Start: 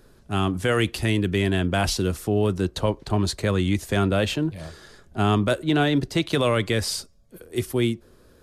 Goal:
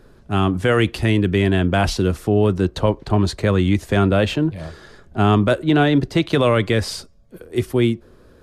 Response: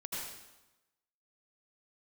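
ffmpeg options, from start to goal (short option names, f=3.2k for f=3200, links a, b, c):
-af "highshelf=f=4.5k:g=-11,volume=5.5dB"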